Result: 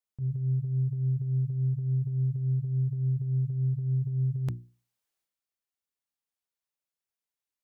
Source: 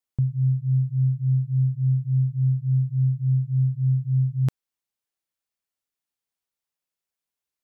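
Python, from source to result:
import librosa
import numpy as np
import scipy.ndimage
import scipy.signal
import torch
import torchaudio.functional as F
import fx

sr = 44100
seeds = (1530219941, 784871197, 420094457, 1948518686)

y = fx.hum_notches(x, sr, base_hz=60, count=6)
y = fx.transient(y, sr, attack_db=-10, sustain_db=8)
y = y * 10.0 ** (-5.0 / 20.0)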